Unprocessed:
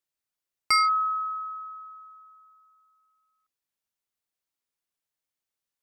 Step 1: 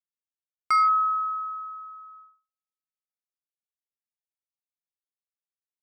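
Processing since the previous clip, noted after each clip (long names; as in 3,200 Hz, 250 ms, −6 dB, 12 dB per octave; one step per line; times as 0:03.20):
noise gate −52 dBFS, range −46 dB
high shelf with overshoot 2,100 Hz −11 dB, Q 1.5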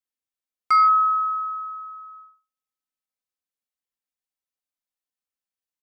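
comb filter 3.9 ms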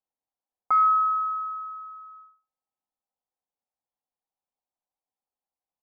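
low-pass with resonance 820 Hz, resonance Q 3.4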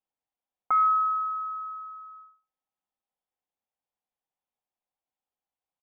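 downsampling to 8,000 Hz
dynamic equaliser 970 Hz, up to −6 dB, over −38 dBFS, Q 2.3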